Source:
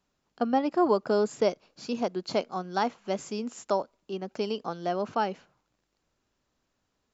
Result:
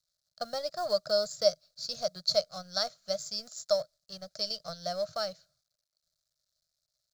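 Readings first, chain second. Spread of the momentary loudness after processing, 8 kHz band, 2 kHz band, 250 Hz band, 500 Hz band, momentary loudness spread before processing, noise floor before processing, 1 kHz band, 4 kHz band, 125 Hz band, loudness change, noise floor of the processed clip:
10 LU, no reading, -6.5 dB, -19.0 dB, -2.5 dB, 11 LU, -79 dBFS, -10.5 dB, +9.5 dB, -9.5 dB, -2.5 dB, -85 dBFS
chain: companding laws mixed up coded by A; FFT filter 160 Hz 0 dB, 260 Hz -28 dB, 390 Hz -26 dB, 620 Hz +5 dB, 900 Hz -24 dB, 1.3 kHz -3 dB, 2.8 kHz -13 dB, 4.2 kHz +14 dB, 10 kHz +3 dB

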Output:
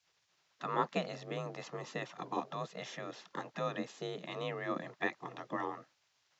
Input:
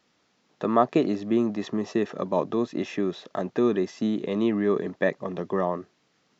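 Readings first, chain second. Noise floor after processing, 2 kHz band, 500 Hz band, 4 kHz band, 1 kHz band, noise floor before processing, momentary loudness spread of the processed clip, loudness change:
-77 dBFS, -5.0 dB, -14.5 dB, -4.5 dB, -8.0 dB, -69 dBFS, 9 LU, -13.5 dB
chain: spectral gate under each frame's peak -10 dB weak; frequency shift +34 Hz; trim -3.5 dB

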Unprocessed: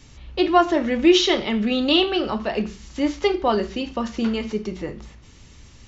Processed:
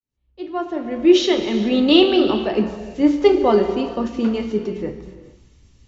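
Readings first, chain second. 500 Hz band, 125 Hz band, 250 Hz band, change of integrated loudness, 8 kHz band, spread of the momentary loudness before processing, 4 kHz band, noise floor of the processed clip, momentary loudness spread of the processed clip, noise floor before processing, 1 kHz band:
+4.5 dB, +2.0 dB, +4.0 dB, +3.0 dB, no reading, 14 LU, -0.5 dB, -62 dBFS, 14 LU, -47 dBFS, -2.5 dB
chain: fade-in on the opening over 1.88 s; peaking EQ 330 Hz +8 dB 2.1 oct; gated-style reverb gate 470 ms flat, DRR 7 dB; three bands expanded up and down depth 40%; trim -2 dB

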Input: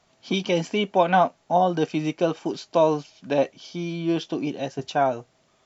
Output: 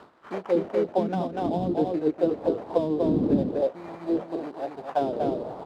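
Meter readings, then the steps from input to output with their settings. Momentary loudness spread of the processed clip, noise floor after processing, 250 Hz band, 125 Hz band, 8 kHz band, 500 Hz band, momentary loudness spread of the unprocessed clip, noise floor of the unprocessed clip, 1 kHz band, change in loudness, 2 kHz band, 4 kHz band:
10 LU, -49 dBFS, +0.5 dB, -2.5 dB, no reading, -2.0 dB, 10 LU, -65 dBFS, -8.0 dB, -2.5 dB, -13.5 dB, under -15 dB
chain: wind noise 310 Hz -29 dBFS; delay 242 ms -4.5 dB; sample-rate reducer 4.3 kHz, jitter 20%; dynamic bell 3.8 kHz, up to +5 dB, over -38 dBFS, Q 1.3; auto-wah 230–1500 Hz, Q 2.3, down, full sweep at -13.5 dBFS; trim +2.5 dB

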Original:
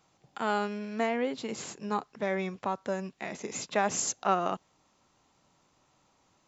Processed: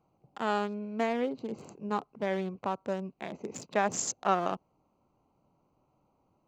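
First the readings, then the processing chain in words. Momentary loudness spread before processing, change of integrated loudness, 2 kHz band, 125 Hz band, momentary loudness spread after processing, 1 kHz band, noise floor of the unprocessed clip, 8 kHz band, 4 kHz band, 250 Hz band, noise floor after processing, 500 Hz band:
10 LU, -1.0 dB, -2.5 dB, 0.0 dB, 12 LU, -0.5 dB, -70 dBFS, no reading, -3.0 dB, 0.0 dB, -74 dBFS, -0.5 dB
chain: local Wiener filter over 25 samples

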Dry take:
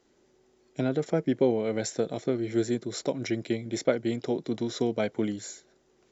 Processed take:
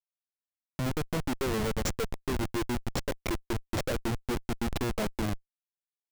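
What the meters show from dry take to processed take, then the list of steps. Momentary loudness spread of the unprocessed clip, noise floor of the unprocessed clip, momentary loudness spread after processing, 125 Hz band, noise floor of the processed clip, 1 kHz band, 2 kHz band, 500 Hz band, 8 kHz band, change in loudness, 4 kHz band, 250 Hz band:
7 LU, -66 dBFS, 4 LU, +1.5 dB, under -85 dBFS, +2.5 dB, +2.0 dB, -7.0 dB, no reading, -4.0 dB, +1.0 dB, -5.0 dB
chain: expander on every frequency bin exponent 1.5; pre-echo 101 ms -22 dB; Schmitt trigger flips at -32 dBFS; trim +3.5 dB

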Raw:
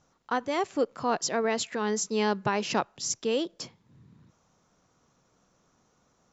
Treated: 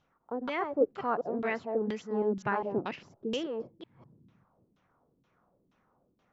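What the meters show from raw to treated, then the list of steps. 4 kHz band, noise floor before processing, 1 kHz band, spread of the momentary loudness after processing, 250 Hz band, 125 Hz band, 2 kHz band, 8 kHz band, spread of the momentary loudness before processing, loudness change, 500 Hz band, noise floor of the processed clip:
-10.5 dB, -69 dBFS, -4.5 dB, 10 LU, -3.0 dB, -3.5 dB, -4.0 dB, no reading, 5 LU, -4.0 dB, -2.0 dB, -74 dBFS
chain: chunks repeated in reverse 202 ms, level -4 dB; LFO low-pass saw down 2.1 Hz 230–3500 Hz; trim -6.5 dB

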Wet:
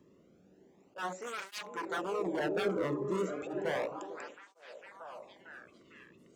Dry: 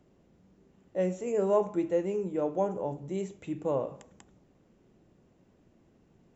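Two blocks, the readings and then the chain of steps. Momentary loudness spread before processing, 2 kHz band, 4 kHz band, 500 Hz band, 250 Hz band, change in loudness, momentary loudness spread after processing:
9 LU, +11.5 dB, no reading, -6.0 dB, -5.0 dB, -5.0 dB, 19 LU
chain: wavefolder -30 dBFS; slow attack 103 ms; on a send: repeats whose band climbs or falls 450 ms, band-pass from 320 Hz, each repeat 0.7 oct, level -1.5 dB; on the sum: cancelling through-zero flanger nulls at 0.33 Hz, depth 1.4 ms; trim +3 dB

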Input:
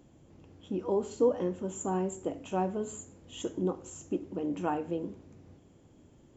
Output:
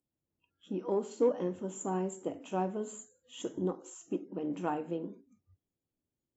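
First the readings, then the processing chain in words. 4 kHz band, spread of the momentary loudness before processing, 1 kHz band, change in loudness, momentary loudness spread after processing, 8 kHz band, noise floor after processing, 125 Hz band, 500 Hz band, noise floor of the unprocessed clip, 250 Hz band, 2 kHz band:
-3.0 dB, 12 LU, -2.5 dB, -2.5 dB, 13 LU, no reading, under -85 dBFS, -3.0 dB, -2.5 dB, -60 dBFS, -2.5 dB, -2.0 dB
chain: spectral noise reduction 29 dB; Chebyshev shaper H 7 -37 dB, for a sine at -14.5 dBFS; trim -2 dB

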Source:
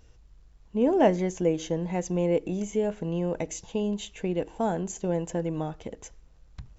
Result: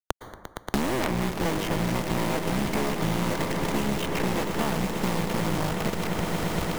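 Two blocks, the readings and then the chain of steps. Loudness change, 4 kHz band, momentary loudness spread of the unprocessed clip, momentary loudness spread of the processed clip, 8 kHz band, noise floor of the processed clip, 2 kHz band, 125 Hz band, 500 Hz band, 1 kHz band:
+0.5 dB, +11.0 dB, 10 LU, 2 LU, no reading, -52 dBFS, +11.5 dB, +4.5 dB, -2.5 dB, +5.0 dB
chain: cycle switcher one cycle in 3, muted; low-pass 2.8 kHz 24 dB/octave; dynamic bell 460 Hz, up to -7 dB, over -38 dBFS, Q 0.79; in parallel at -1.5 dB: compression 6:1, threshold -38 dBFS, peak gain reduction 16.5 dB; on the sum: companded quantiser 2-bit; integer overflow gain 3.5 dB; on a send: echo with a slow build-up 116 ms, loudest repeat 8, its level -15.5 dB; on the sum: plate-style reverb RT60 0.78 s, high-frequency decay 0.5×, pre-delay 100 ms, DRR 12 dB; three bands compressed up and down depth 100%

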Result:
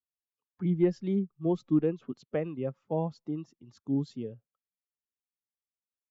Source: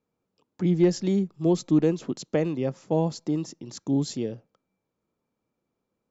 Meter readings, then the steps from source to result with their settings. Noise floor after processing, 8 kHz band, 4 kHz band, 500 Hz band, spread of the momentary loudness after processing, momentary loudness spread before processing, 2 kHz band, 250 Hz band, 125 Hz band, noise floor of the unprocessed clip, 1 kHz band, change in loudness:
under -85 dBFS, no reading, under -15 dB, -5.5 dB, 13 LU, 11 LU, -7.5 dB, -5.5 dB, -5.5 dB, -82 dBFS, -5.5 dB, -5.5 dB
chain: expander on every frequency bin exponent 1.5; low-pass 2.5 kHz 12 dB/octave; trim -3.5 dB

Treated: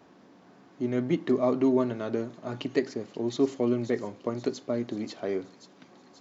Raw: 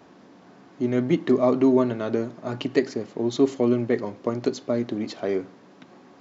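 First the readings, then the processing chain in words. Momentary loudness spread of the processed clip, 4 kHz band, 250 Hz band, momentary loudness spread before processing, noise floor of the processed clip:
10 LU, -4.5 dB, -5.0 dB, 10 LU, -56 dBFS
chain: feedback echo behind a high-pass 532 ms, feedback 59%, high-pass 4.7 kHz, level -7.5 dB; trim -5 dB

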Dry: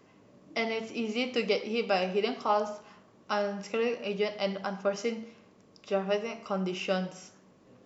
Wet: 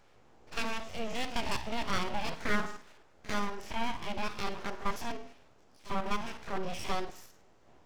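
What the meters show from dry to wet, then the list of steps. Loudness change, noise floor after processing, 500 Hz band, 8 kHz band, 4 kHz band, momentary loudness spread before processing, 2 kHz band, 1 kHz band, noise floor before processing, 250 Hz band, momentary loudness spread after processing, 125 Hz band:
-5.0 dB, -61 dBFS, -11.0 dB, no reading, -3.0 dB, 8 LU, -1.5 dB, -2.0 dB, -60 dBFS, -5.0 dB, 10 LU, -3.0 dB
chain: spectrogram pixelated in time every 50 ms; pre-echo 47 ms -15 dB; full-wave rectifier

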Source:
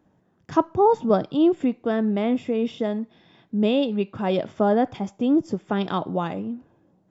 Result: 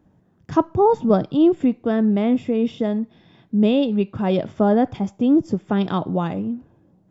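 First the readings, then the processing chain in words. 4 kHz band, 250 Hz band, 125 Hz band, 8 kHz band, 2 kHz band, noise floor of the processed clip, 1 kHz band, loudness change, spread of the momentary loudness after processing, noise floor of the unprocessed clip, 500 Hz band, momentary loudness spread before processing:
0.0 dB, +4.5 dB, +6.0 dB, no reading, 0.0 dB, -59 dBFS, +0.5 dB, +3.0 dB, 8 LU, -64 dBFS, +2.0 dB, 9 LU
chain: bass shelf 220 Hz +10 dB

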